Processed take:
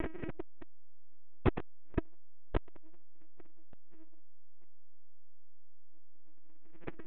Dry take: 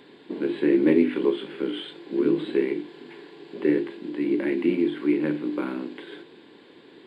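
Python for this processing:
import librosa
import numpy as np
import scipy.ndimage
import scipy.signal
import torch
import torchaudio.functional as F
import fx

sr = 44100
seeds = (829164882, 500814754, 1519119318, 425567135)

y = fx.bin_compress(x, sr, power=0.6)
y = scipy.signal.sosfilt(scipy.signal.ellip(4, 1.0, 60, 2500.0, 'lowpass', fs=sr, output='sos'), y)
y = fx.low_shelf(y, sr, hz=61.0, db=5.0)
y = y + 0.88 * np.pad(y, (int(6.0 * sr / 1000.0), 0))[:len(y)]
y = fx.dynamic_eq(y, sr, hz=1800.0, q=0.73, threshold_db=-39.0, ratio=4.0, max_db=-5)
y = fx.rider(y, sr, range_db=4, speed_s=2.0)
y = np.clip(10.0 ** (22.0 / 20.0) * y, -1.0, 1.0) / 10.0 ** (22.0 / 20.0)
y = y + 10.0 ** (-6.0 / 20.0) * np.pad(y, (int(747 * sr / 1000.0), 0))[:len(y)]
y = fx.lpc_vocoder(y, sr, seeds[0], excitation='pitch_kept', order=10)
y = fx.transformer_sat(y, sr, knee_hz=280.0)
y = F.gain(torch.from_numpy(y), 5.5).numpy()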